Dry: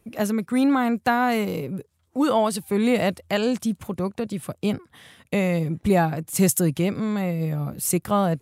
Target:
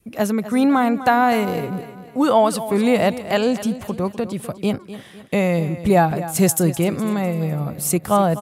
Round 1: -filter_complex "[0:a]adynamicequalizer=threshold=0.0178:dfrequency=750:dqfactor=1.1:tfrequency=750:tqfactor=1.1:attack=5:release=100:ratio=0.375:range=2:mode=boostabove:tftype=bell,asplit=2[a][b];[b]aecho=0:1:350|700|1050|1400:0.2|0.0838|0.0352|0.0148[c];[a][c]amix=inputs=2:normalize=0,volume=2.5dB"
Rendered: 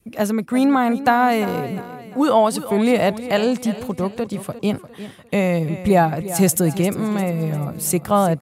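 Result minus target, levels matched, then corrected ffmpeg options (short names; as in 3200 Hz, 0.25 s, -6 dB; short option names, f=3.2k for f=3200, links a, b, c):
echo 99 ms late
-filter_complex "[0:a]adynamicequalizer=threshold=0.0178:dfrequency=750:dqfactor=1.1:tfrequency=750:tqfactor=1.1:attack=5:release=100:ratio=0.375:range=2:mode=boostabove:tftype=bell,asplit=2[a][b];[b]aecho=0:1:251|502|753|1004:0.2|0.0838|0.0352|0.0148[c];[a][c]amix=inputs=2:normalize=0,volume=2.5dB"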